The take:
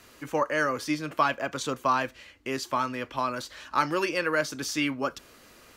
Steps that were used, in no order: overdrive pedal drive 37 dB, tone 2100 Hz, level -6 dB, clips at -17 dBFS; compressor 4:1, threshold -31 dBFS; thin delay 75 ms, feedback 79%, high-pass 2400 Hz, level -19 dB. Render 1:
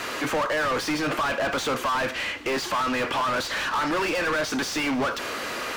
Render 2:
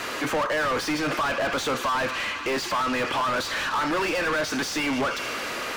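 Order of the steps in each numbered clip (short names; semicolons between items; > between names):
compressor > overdrive pedal > thin delay; thin delay > compressor > overdrive pedal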